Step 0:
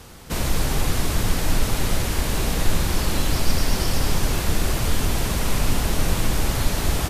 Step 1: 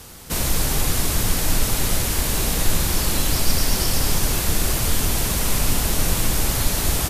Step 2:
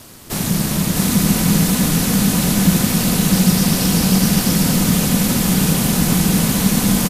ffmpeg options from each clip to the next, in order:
-af "aemphasis=mode=production:type=cd"
-af "aeval=exprs='val(0)*sin(2*PI*180*n/s)':c=same,aecho=1:1:649|653:0.668|0.668,volume=1.5"

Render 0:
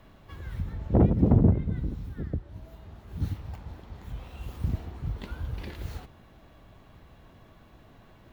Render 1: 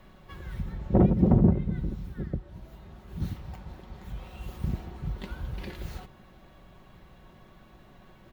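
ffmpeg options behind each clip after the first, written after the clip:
-af "aecho=1:1:5.4:0.44"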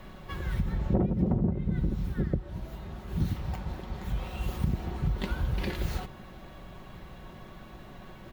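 -af "acompressor=threshold=0.0316:ratio=8,volume=2.24"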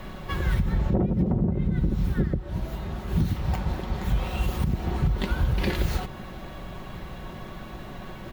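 -af "alimiter=limit=0.075:level=0:latency=1:release=204,volume=2.51"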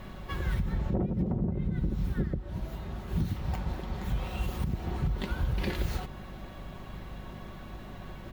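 -af "aeval=exprs='val(0)+0.0112*(sin(2*PI*50*n/s)+sin(2*PI*2*50*n/s)/2+sin(2*PI*3*50*n/s)/3+sin(2*PI*4*50*n/s)/4+sin(2*PI*5*50*n/s)/5)':c=same,volume=0.501"

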